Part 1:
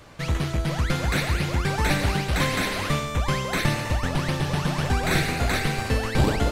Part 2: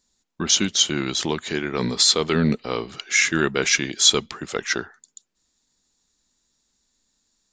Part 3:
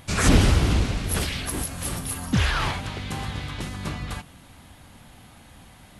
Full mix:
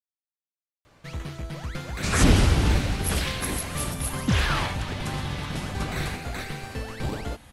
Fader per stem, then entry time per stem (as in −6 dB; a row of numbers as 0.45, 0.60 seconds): −9.5 dB, muted, −1.0 dB; 0.85 s, muted, 1.95 s